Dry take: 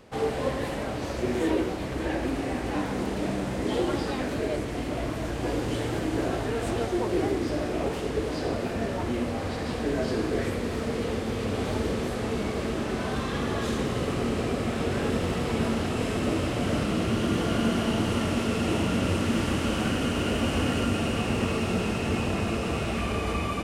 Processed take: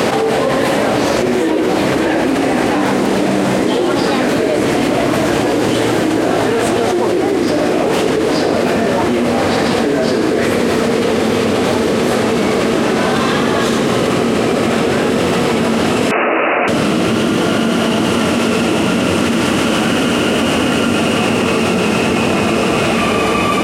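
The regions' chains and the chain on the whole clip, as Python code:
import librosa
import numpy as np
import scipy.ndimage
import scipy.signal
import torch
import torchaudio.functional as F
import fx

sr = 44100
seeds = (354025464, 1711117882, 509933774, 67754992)

y = fx.chain(x, sr, fx.bandpass_edges(low_hz=600.0, high_hz=4300.0),
    fx.resample_bad(factor=8, down='none', up='filtered'), at=(16.11, 16.68))
y = scipy.signal.sosfilt(scipy.signal.butter(2, 180.0, 'highpass', fs=sr, output='sos'), y)
y = fx.env_flatten(y, sr, amount_pct=100)
y = y * librosa.db_to_amplitude(9.0)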